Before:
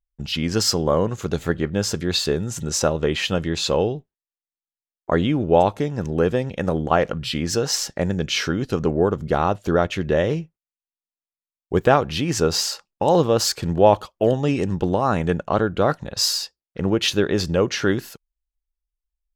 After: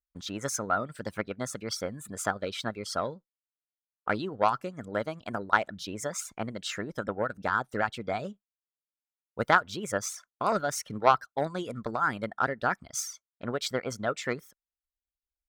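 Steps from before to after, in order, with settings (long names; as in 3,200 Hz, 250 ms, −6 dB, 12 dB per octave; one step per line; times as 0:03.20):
reverb reduction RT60 0.89 s
harmonic generator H 3 −15 dB, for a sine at −2 dBFS
parametric band 1,100 Hz +13 dB 0.45 octaves
speed change +25%
level −6 dB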